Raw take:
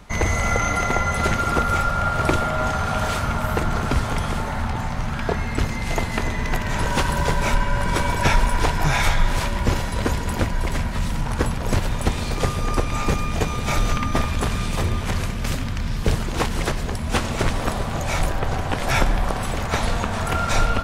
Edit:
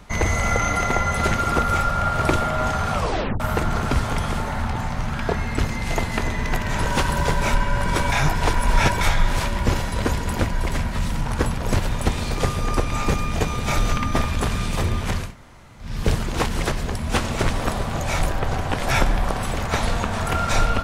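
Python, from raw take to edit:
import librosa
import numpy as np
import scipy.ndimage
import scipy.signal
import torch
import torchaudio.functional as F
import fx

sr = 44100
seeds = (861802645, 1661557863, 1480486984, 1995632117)

y = fx.edit(x, sr, fx.tape_stop(start_s=2.94, length_s=0.46),
    fx.reverse_span(start_s=8.12, length_s=0.89),
    fx.room_tone_fill(start_s=15.25, length_s=0.64, crossfade_s=0.24), tone=tone)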